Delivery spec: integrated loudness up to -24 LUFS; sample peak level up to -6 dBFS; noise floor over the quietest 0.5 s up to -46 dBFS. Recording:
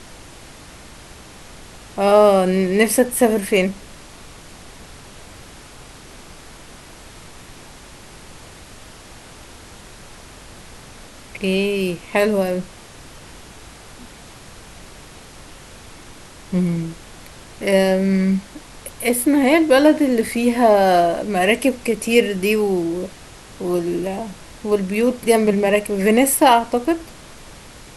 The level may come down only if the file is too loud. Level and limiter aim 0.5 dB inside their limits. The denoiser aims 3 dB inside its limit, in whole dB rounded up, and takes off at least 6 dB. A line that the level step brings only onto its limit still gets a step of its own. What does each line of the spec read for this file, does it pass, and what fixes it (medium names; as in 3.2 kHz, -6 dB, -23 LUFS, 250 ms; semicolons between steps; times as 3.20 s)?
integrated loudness -17.5 LUFS: fail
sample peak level -1.5 dBFS: fail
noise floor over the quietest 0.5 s -41 dBFS: fail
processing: trim -7 dB